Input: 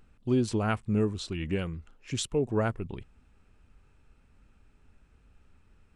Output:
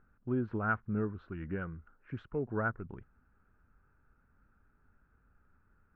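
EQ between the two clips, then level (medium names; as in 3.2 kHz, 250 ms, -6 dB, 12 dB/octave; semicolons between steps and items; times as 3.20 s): four-pole ladder low-pass 1.6 kHz, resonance 70%; peaking EQ 170 Hz +3.5 dB 2.5 oct; +1.5 dB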